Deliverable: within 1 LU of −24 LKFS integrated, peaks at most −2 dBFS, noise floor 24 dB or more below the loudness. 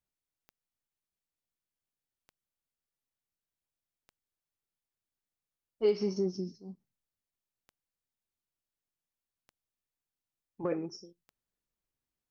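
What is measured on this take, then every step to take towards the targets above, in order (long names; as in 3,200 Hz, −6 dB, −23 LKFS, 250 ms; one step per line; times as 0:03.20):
number of clicks 7; integrated loudness −33.5 LKFS; sample peak −17.5 dBFS; target loudness −24.0 LKFS
→ click removal
level +9.5 dB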